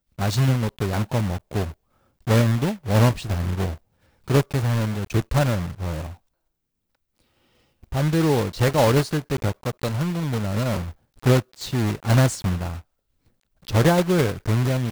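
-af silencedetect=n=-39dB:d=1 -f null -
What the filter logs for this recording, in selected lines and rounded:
silence_start: 6.15
silence_end: 7.84 | silence_duration: 1.69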